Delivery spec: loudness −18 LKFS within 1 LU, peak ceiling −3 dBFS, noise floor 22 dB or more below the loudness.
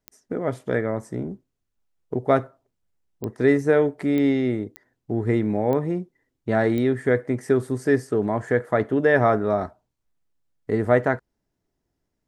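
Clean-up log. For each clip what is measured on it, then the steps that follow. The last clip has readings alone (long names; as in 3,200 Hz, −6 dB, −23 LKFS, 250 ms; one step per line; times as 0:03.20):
number of clicks 6; integrated loudness −23.0 LKFS; sample peak −4.5 dBFS; target loudness −18.0 LKFS
→ click removal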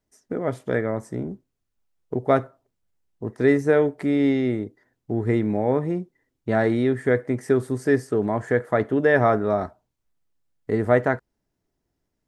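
number of clicks 0; integrated loudness −23.0 LKFS; sample peak −4.5 dBFS; target loudness −18.0 LKFS
→ level +5 dB
brickwall limiter −3 dBFS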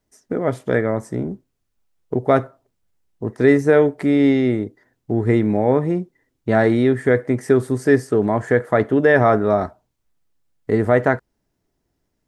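integrated loudness −18.5 LKFS; sample peak −3.0 dBFS; background noise floor −73 dBFS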